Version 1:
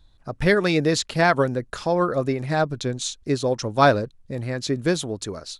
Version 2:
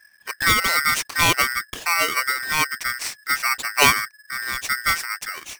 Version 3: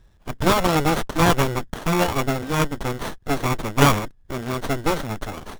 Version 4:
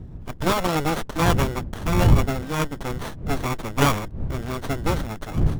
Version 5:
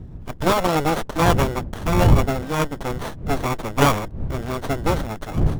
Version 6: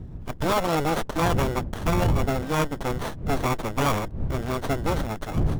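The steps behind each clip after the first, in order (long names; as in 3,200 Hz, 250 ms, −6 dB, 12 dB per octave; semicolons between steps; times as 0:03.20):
ring modulator with a square carrier 1,700 Hz
windowed peak hold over 17 samples; level +4.5 dB
wind on the microphone 120 Hz −22 dBFS; level −3.5 dB
dynamic equaliser 640 Hz, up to +4 dB, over −37 dBFS, Q 0.86; level +1 dB
brickwall limiter −13 dBFS, peak gain reduction 11 dB; level −1 dB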